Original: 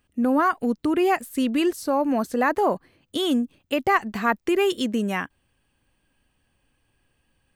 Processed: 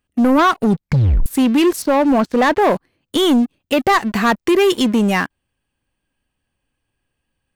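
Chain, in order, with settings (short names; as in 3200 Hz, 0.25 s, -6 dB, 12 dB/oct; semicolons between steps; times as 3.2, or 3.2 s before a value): 0.61 tape stop 0.65 s; 1.82–2.62 LPF 4200 Hz 12 dB/oct; sample leveller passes 3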